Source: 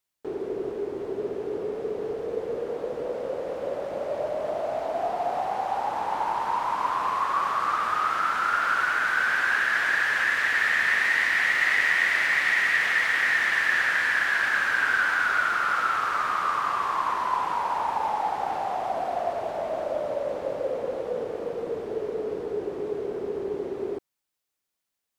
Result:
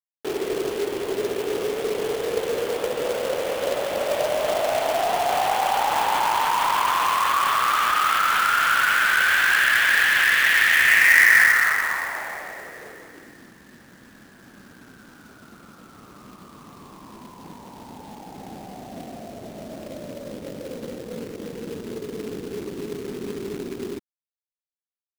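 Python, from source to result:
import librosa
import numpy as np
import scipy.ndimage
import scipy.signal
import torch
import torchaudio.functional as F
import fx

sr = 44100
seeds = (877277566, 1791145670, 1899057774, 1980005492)

p1 = fx.tilt_shelf(x, sr, db=-5.0, hz=1200.0)
p2 = fx.notch(p1, sr, hz=3800.0, q=22.0)
p3 = fx.over_compress(p2, sr, threshold_db=-30.0, ratio=-1.0)
p4 = p2 + (p3 * librosa.db_to_amplitude(1.0))
p5 = fx.filter_sweep_lowpass(p4, sr, from_hz=3400.0, to_hz=230.0, start_s=10.72, end_s=13.56, q=2.2)
p6 = fx.quant_companded(p5, sr, bits=4)
y = p6 * librosa.db_to_amplitude(-1.0)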